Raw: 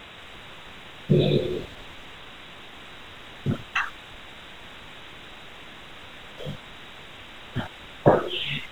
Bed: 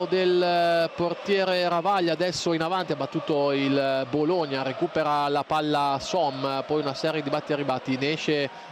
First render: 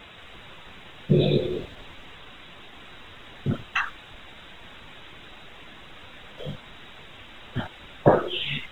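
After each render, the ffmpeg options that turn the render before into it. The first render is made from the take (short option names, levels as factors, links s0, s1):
-af "afftdn=nr=6:nf=-44"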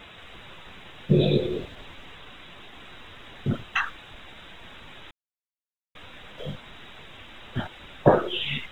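-filter_complex "[0:a]asplit=3[s0][s1][s2];[s0]atrim=end=5.11,asetpts=PTS-STARTPTS,afade=t=out:st=5.106:d=0.004:c=hsin[s3];[s1]atrim=start=5.11:end=5.95,asetpts=PTS-STARTPTS,volume=0[s4];[s2]atrim=start=5.95,asetpts=PTS-STARTPTS,afade=t=in:d=0.004:c=hsin[s5];[s3][s4][s5]concat=n=3:v=0:a=1"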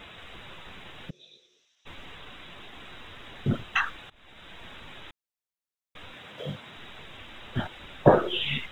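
-filter_complex "[0:a]asplit=3[s0][s1][s2];[s0]afade=t=out:st=1.09:d=0.02[s3];[s1]bandpass=f=5800:t=q:w=9,afade=t=in:st=1.09:d=0.02,afade=t=out:st=1.85:d=0.02[s4];[s2]afade=t=in:st=1.85:d=0.02[s5];[s3][s4][s5]amix=inputs=3:normalize=0,asettb=1/sr,asplit=3[s6][s7][s8];[s6]atrim=end=6.144[s9];[s7]atrim=start=6.14:end=6.77,asetpts=PTS-STARTPTS,afade=t=in:d=0.004:c=qsin,afade=t=out:st=0.626:d=0.004:c=qsin,highpass=f=87:w=0.5412,highpass=f=87:w=1.3066[s10];[s8]atrim=start=6.766[s11];[s9][s10]acrossfade=d=0.004:c1=hsin:c2=qsin[s12];[s12][s11]acrossfade=d=0.004:c1=qsin:c2=hsin,asplit=2[s13][s14];[s13]atrim=end=4.1,asetpts=PTS-STARTPTS,afade=t=out:st=4.096:d=0.004:c=hsin:silence=0.0841395[s15];[s14]atrim=start=4.1,asetpts=PTS-STARTPTS,afade=t=in:d=0.48:silence=0.0841395[s16];[s15][s16]concat=n=2:v=0:a=1"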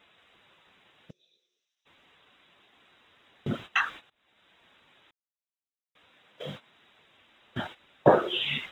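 -af "highpass=f=260:p=1,agate=range=0.178:threshold=0.00891:ratio=16:detection=peak"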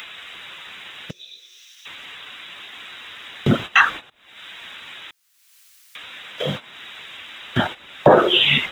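-filter_complex "[0:a]acrossover=split=440|1300[s0][s1][s2];[s2]acompressor=mode=upward:threshold=0.00891:ratio=2.5[s3];[s0][s1][s3]amix=inputs=3:normalize=0,alimiter=level_in=5.01:limit=0.891:release=50:level=0:latency=1"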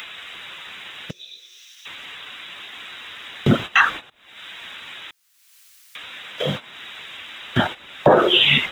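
-af "volume=1.12,alimiter=limit=0.708:level=0:latency=1"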